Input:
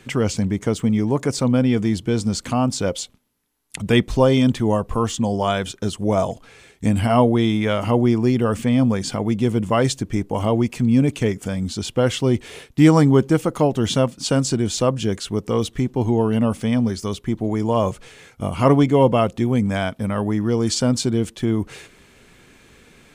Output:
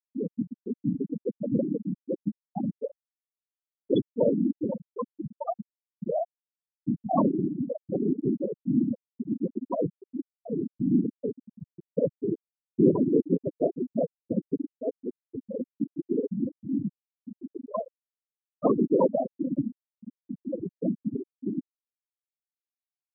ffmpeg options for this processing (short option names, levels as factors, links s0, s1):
-filter_complex "[0:a]afftfilt=real='hypot(re,im)*cos(2*PI*random(0))':imag='hypot(re,im)*sin(2*PI*random(1))':win_size=512:overlap=0.75,acrossover=split=130[s0][s1];[s0]acompressor=threshold=0.00891:ratio=20[s2];[s2][s1]amix=inputs=2:normalize=0,aecho=1:1:425|850|1275|1700:0.237|0.083|0.029|0.0102,afftfilt=real='re*gte(hypot(re,im),0.355)':imag='im*gte(hypot(re,im),0.355)':win_size=1024:overlap=0.75"